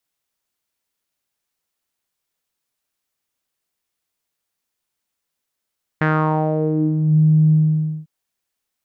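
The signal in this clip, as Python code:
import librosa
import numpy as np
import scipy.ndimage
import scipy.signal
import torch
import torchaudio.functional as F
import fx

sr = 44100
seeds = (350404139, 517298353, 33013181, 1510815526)

y = fx.sub_voice(sr, note=51, wave='saw', cutoff_hz=160.0, q=3.7, env_oct=3.5, env_s=1.14, attack_ms=3.2, decay_s=0.51, sustain_db=-4.5, release_s=0.54, note_s=1.51, slope=12)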